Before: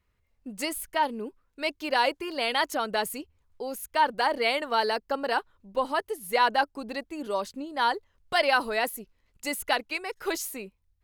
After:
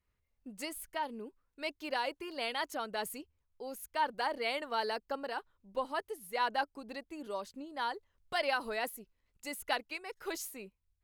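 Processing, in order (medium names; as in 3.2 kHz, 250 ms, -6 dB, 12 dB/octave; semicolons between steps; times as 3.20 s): random flutter of the level, depth 60%; trim -6.5 dB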